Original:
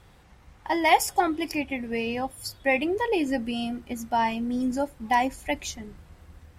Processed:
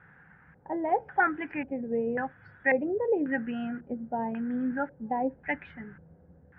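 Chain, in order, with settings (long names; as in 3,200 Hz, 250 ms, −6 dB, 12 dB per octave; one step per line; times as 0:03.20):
auto-filter low-pass square 0.92 Hz 550–1,600 Hz
loudspeaker in its box 120–2,700 Hz, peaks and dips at 160 Hz +8 dB, 350 Hz −6 dB, 630 Hz −7 dB, 1,100 Hz −7 dB, 1,600 Hz +10 dB
level −3 dB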